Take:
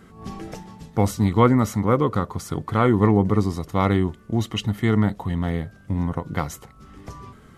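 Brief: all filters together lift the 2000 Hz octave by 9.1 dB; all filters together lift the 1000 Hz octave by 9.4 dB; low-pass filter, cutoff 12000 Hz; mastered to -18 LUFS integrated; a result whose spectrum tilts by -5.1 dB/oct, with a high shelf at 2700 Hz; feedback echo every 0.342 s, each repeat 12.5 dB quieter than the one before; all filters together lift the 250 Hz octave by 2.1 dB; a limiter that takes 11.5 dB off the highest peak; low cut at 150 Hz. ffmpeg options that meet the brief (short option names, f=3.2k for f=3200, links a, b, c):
-af "highpass=150,lowpass=12k,equalizer=f=250:t=o:g=3,equalizer=f=1k:t=o:g=8.5,equalizer=f=2k:t=o:g=5,highshelf=f=2.7k:g=8,alimiter=limit=-7.5dB:level=0:latency=1,aecho=1:1:342|684|1026:0.237|0.0569|0.0137,volume=4dB"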